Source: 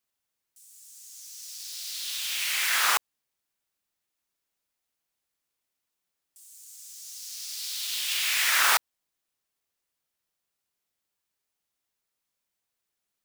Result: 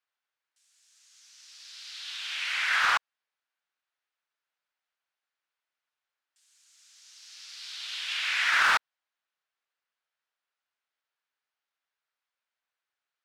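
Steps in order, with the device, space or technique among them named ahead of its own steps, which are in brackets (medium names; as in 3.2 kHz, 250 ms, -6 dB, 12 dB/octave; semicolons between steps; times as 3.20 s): megaphone (band-pass 670–3500 Hz; peaking EQ 1.5 kHz +5 dB 0.47 oct; hard clipper -17 dBFS, distortion -17 dB)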